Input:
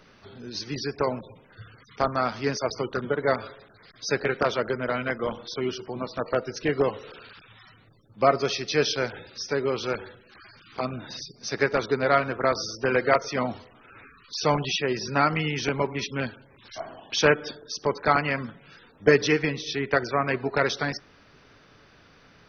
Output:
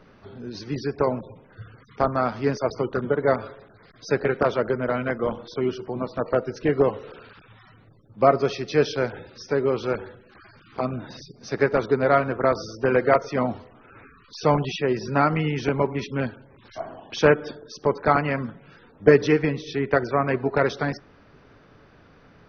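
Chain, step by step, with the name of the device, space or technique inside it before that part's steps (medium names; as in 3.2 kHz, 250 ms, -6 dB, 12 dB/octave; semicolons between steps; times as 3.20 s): through cloth (treble shelf 2.1 kHz -14 dB); trim +4.5 dB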